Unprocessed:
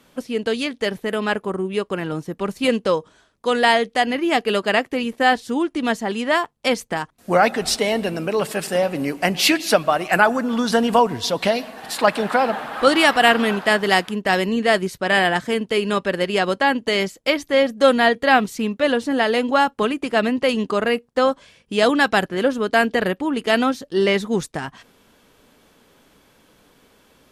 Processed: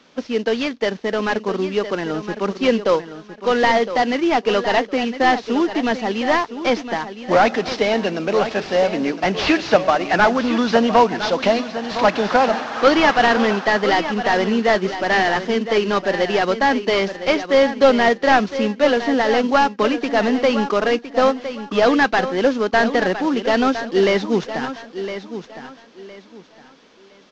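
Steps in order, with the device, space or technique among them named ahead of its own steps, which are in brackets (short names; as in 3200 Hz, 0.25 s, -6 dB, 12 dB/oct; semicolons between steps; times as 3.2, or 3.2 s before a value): early wireless headset (HPF 180 Hz 24 dB/oct; CVSD 32 kbps); feedback echo 1.011 s, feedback 26%, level -11 dB; gain +3 dB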